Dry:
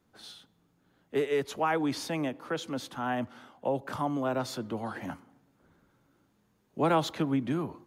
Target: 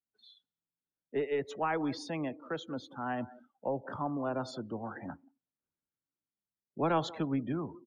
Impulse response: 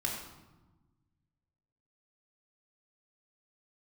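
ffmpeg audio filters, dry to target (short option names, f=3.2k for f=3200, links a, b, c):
-filter_complex "[0:a]aeval=exprs='0.188*(cos(1*acos(clip(val(0)/0.188,-1,1)))-cos(1*PI/2))+0.0119*(cos(2*acos(clip(val(0)/0.188,-1,1)))-cos(2*PI/2))':c=same,asplit=2[a][b];[b]adelay=180,highpass=300,lowpass=3.4k,asoftclip=type=hard:threshold=-23dB,volume=-16dB[c];[a][c]amix=inputs=2:normalize=0,afftdn=nr=30:nf=-41,volume=-4dB"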